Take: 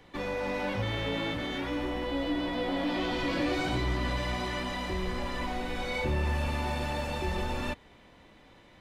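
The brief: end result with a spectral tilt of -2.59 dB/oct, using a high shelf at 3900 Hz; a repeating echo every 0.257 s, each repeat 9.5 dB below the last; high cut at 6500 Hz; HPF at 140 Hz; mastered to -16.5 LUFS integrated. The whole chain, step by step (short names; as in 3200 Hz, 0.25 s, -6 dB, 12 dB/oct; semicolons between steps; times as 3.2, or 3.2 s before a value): HPF 140 Hz; LPF 6500 Hz; high shelf 3900 Hz +7 dB; feedback echo 0.257 s, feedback 33%, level -9.5 dB; gain +15 dB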